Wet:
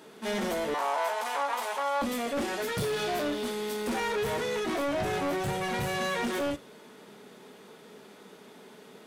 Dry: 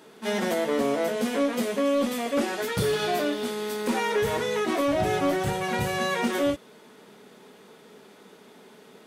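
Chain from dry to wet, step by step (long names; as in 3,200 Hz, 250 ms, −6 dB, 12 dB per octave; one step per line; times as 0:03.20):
soft clipping −26.5 dBFS, distortion −10 dB
0:00.74–0:02.02: high-pass with resonance 890 Hz, resonance Q 4.9
convolution reverb, pre-delay 3 ms, DRR 16 dB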